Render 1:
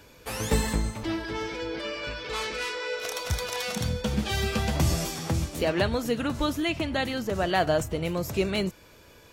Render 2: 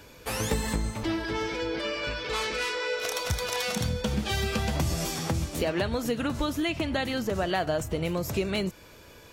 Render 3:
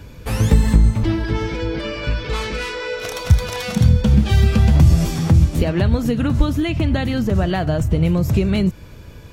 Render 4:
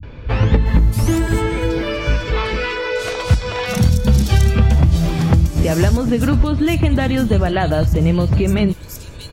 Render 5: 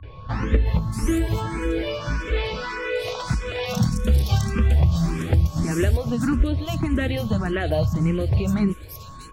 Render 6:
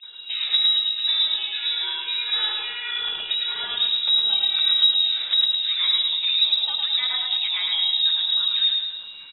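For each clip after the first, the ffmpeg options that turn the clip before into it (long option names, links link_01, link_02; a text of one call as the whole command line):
ffmpeg -i in.wav -af "acompressor=threshold=-27dB:ratio=4,volume=2.5dB" out.wav
ffmpeg -i in.wav -af "bass=frequency=250:gain=15,treble=frequency=4000:gain=-3,volume=3.5dB" out.wav
ffmpeg -i in.wav -filter_complex "[0:a]acompressor=threshold=-13dB:ratio=6,acrossover=split=180|4000[link_01][link_02][link_03];[link_02]adelay=30[link_04];[link_03]adelay=660[link_05];[link_01][link_04][link_05]amix=inputs=3:normalize=0,volume=5dB" out.wav
ffmpeg -i in.wav -filter_complex "[0:a]aeval=exprs='val(0)+0.0126*sin(2*PI*1100*n/s)':channel_layout=same,asplit=2[link_01][link_02];[link_02]afreqshift=1.7[link_03];[link_01][link_03]amix=inputs=2:normalize=1,volume=-3.5dB" out.wav
ffmpeg -i in.wav -af "aecho=1:1:107|214|321|428|535|642:0.668|0.321|0.154|0.0739|0.0355|0.017,lowpass=frequency=3300:width_type=q:width=0.5098,lowpass=frequency=3300:width_type=q:width=0.6013,lowpass=frequency=3300:width_type=q:width=0.9,lowpass=frequency=3300:width_type=q:width=2.563,afreqshift=-3900,volume=-3dB" out.wav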